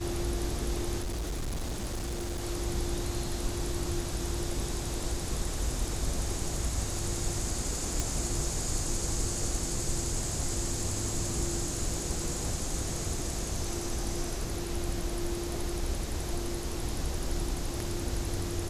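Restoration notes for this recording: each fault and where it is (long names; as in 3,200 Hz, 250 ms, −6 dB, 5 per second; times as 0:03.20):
0:01.02–0:02.41: clipping −30 dBFS
0:08.00: click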